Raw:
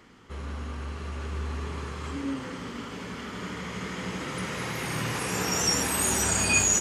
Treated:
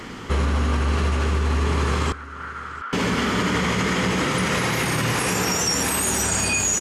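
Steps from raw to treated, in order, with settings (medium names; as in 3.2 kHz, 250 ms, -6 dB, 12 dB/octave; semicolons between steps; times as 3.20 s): in parallel at +2.5 dB: compressor with a negative ratio -37 dBFS, ratio -1; on the sum: peak limiter -21 dBFS, peak gain reduction 10.5 dB; 2.12–2.93 s: band-pass filter 1.4 kHz, Q 6.4; delay 694 ms -19 dB; trim +8 dB; AC-3 96 kbps 44.1 kHz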